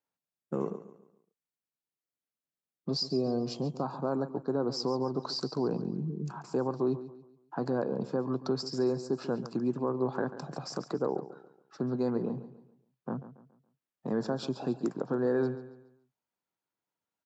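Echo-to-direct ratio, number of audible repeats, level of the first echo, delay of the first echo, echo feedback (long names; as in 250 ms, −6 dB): −13.5 dB, 3, −14.0 dB, 140 ms, 37%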